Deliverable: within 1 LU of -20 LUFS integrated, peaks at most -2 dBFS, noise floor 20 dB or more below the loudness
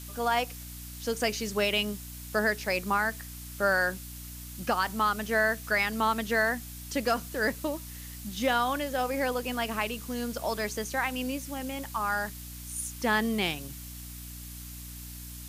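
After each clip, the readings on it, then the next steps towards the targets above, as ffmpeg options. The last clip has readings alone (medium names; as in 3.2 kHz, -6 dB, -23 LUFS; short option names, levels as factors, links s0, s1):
hum 60 Hz; highest harmonic 300 Hz; hum level -42 dBFS; noise floor -42 dBFS; noise floor target -50 dBFS; loudness -29.5 LUFS; peak level -15.0 dBFS; loudness target -20.0 LUFS
-> -af "bandreject=f=60:t=h:w=4,bandreject=f=120:t=h:w=4,bandreject=f=180:t=h:w=4,bandreject=f=240:t=h:w=4,bandreject=f=300:t=h:w=4"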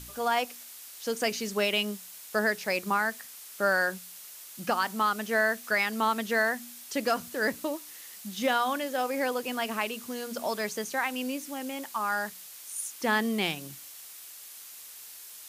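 hum not found; noise floor -47 dBFS; noise floor target -50 dBFS
-> -af "afftdn=nr=6:nf=-47"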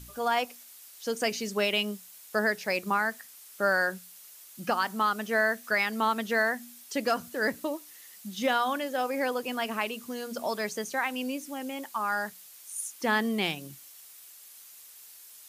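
noise floor -51 dBFS; loudness -29.5 LUFS; peak level -15.5 dBFS; loudness target -20.0 LUFS
-> -af "volume=2.99"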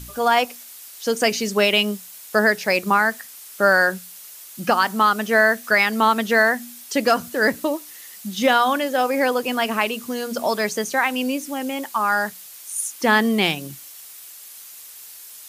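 loudness -20.0 LUFS; peak level -6.0 dBFS; noise floor -41 dBFS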